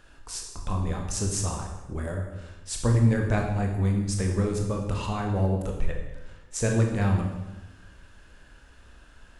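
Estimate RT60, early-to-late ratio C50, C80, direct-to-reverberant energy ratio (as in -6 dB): 1.1 s, 4.0 dB, 6.5 dB, 1.0 dB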